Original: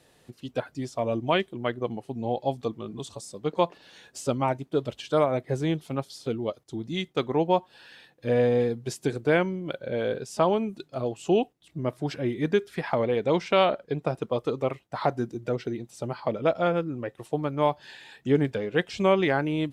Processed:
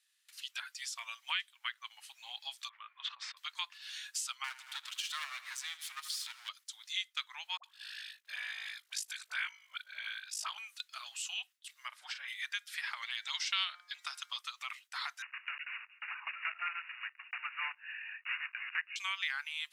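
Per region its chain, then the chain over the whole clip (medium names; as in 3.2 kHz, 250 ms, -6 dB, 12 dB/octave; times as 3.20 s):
2.69–3.37 s: low-pass 2.2 kHz 24 dB/octave + decay stretcher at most 45 dB/s
4.44–6.49 s: partial rectifier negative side -12 dB + feedback delay 80 ms, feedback 59%, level -18.5 dB + upward compressor, threshold -29 dBFS
7.57–10.58 s: ring modulator 26 Hz + phase dispersion highs, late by 65 ms, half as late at 670 Hz
11.88–12.28 s: tilt EQ -4 dB/octave + doubling 40 ms -8 dB
13.02–14.41 s: peaking EQ 5.3 kHz +7 dB 1.7 oct + band-stop 2.4 kHz, Q 10 + de-hum 177.2 Hz, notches 13
15.22–18.96 s: block-companded coder 3-bit + brick-wall FIR low-pass 2.9 kHz
whole clip: gate with hold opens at -48 dBFS; Bessel high-pass 2.3 kHz, order 8; compression 2:1, threshold -53 dBFS; trim +11 dB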